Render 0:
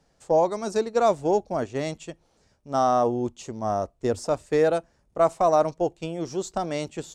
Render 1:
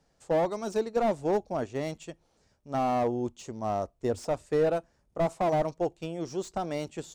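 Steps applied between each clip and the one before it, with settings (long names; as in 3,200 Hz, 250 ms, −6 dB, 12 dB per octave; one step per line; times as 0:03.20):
slew-rate limiting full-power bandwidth 79 Hz
level −4 dB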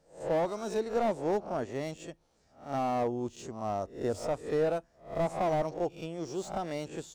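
peak hold with a rise ahead of every peak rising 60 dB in 0.39 s
level −3.5 dB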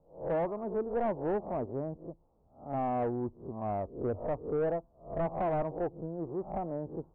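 Butterworth low-pass 1,100 Hz 48 dB per octave
low-shelf EQ 120 Hz +6 dB
soft clipping −24.5 dBFS, distortion −16 dB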